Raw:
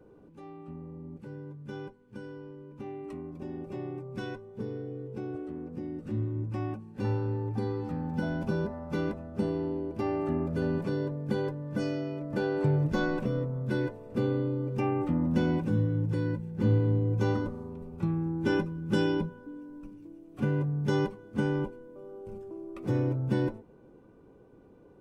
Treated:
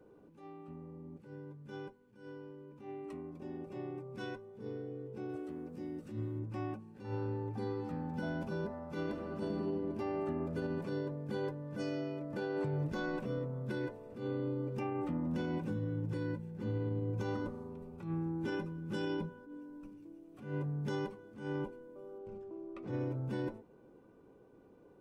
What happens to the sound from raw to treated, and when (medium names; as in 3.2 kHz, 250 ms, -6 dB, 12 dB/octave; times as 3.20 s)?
5.29–6.39 s: treble shelf 4 kHz +10.5 dB
9.03–9.53 s: reverb throw, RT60 2.7 s, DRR 0.5 dB
22.18–23.00 s: distance through air 99 m
whole clip: bass shelf 150 Hz -7.5 dB; peak limiter -25.5 dBFS; attacks held to a fixed rise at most 110 dB/s; trim -3 dB